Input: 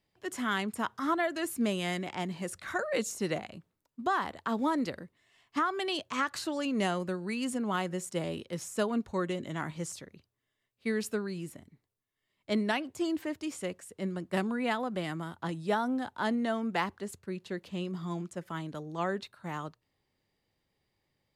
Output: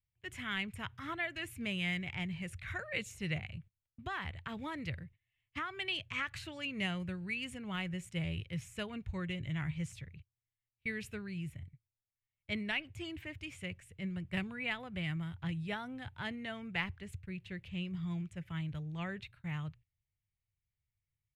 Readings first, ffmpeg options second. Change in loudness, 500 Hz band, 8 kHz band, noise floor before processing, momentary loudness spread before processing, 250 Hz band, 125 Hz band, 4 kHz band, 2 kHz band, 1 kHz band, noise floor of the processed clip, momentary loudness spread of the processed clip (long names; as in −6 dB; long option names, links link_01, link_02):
−6.0 dB, −13.5 dB, −12.5 dB, −82 dBFS, 9 LU, −8.0 dB, +1.0 dB, −2.0 dB, −2.0 dB, −12.5 dB, below −85 dBFS, 9 LU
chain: -af "agate=range=-18dB:threshold=-55dB:ratio=16:detection=peak,firequalizer=gain_entry='entry(110,0);entry(230,-28);entry(1100,-28);entry(2300,-10);entry(4600,-27)':delay=0.05:min_phase=1,volume=14.5dB"